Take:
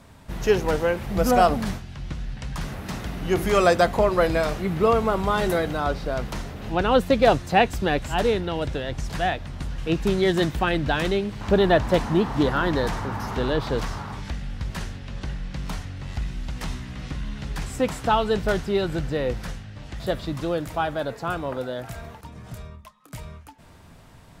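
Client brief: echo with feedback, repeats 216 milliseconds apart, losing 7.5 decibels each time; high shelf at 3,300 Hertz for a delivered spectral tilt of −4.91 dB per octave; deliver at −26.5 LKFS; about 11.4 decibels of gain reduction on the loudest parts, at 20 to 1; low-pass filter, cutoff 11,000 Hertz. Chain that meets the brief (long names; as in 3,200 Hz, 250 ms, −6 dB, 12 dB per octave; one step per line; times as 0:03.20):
low-pass filter 11,000 Hz
high-shelf EQ 3,300 Hz +7.5 dB
downward compressor 20 to 1, threshold −23 dBFS
repeating echo 216 ms, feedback 42%, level −7.5 dB
level +2.5 dB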